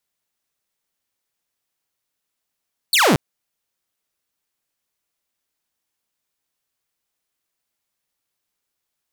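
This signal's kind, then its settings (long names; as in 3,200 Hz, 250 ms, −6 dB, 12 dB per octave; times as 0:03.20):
single falling chirp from 4,700 Hz, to 120 Hz, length 0.23 s saw, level −9.5 dB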